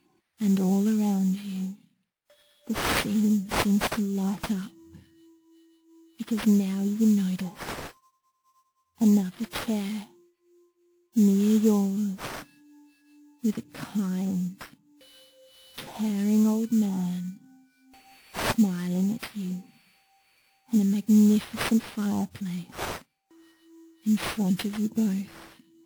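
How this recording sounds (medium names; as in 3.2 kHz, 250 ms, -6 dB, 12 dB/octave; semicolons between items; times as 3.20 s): phasing stages 2, 1.9 Hz, lowest notch 740–2300 Hz; aliases and images of a low sample rate 7 kHz, jitter 20%; WMA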